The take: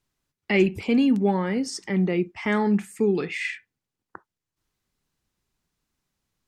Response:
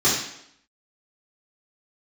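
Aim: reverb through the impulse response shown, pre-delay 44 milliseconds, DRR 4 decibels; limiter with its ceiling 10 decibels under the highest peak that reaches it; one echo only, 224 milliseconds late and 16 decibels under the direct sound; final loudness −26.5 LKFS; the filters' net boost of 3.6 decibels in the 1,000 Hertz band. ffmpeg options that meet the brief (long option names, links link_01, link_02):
-filter_complex "[0:a]equalizer=frequency=1000:width_type=o:gain=4.5,alimiter=limit=-17dB:level=0:latency=1,aecho=1:1:224:0.158,asplit=2[link_01][link_02];[1:a]atrim=start_sample=2205,adelay=44[link_03];[link_02][link_03]afir=irnorm=-1:irlink=0,volume=-21.5dB[link_04];[link_01][link_04]amix=inputs=2:normalize=0,volume=-3dB"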